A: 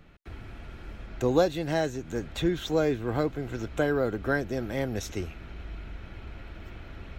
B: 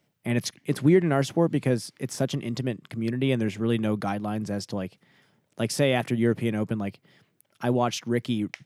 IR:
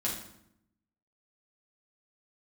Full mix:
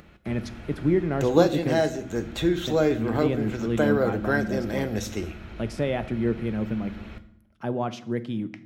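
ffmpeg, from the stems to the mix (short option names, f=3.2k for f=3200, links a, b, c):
-filter_complex "[0:a]acompressor=mode=upward:threshold=-48dB:ratio=2.5,highpass=f=59:p=1,volume=1dB,asplit=2[a][b];[b]volume=-11.5dB[c];[1:a]lowpass=f=1.7k:p=1,volume=-4dB,asplit=3[d][e][f];[d]atrim=end=2.03,asetpts=PTS-STARTPTS,afade=t=out:st=2.026:d=0.004:c=hsin[g];[e]atrim=start=2.03:end=2.67,asetpts=PTS-STARTPTS,volume=0[h];[f]atrim=start=2.67,asetpts=PTS-STARTPTS,afade=t=in:d=0.004:c=hsin[i];[g][h][i]concat=n=3:v=0:a=1,asplit=2[j][k];[k]volume=-15.5dB[l];[2:a]atrim=start_sample=2205[m];[c][l]amix=inputs=2:normalize=0[n];[n][m]afir=irnorm=-1:irlink=0[o];[a][j][o]amix=inputs=3:normalize=0"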